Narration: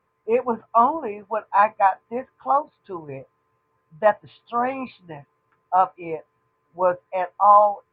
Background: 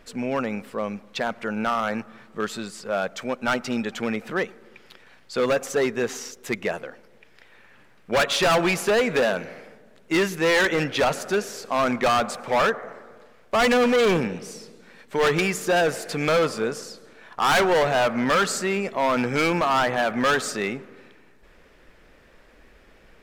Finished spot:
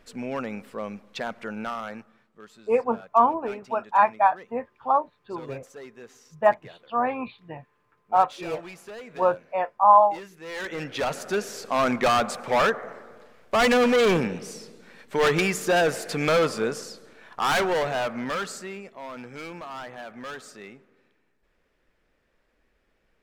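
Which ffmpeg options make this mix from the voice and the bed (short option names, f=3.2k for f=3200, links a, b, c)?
-filter_complex "[0:a]adelay=2400,volume=-1.5dB[a];[1:a]volume=14.5dB,afade=t=out:st=1.4:d=0.93:silence=0.177828,afade=t=in:st=10.44:d=1.23:silence=0.105925,afade=t=out:st=16.76:d=2.19:silence=0.158489[b];[a][b]amix=inputs=2:normalize=0"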